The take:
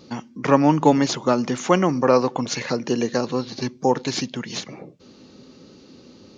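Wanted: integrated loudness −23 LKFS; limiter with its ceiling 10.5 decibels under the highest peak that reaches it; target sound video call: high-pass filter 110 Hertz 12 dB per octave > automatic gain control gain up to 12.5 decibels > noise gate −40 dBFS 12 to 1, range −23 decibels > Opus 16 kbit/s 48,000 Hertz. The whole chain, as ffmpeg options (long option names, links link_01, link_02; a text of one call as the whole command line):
ffmpeg -i in.wav -af "alimiter=limit=-12.5dB:level=0:latency=1,highpass=110,dynaudnorm=maxgain=12.5dB,agate=range=-23dB:threshold=-40dB:ratio=12,volume=2.5dB" -ar 48000 -c:a libopus -b:a 16k out.opus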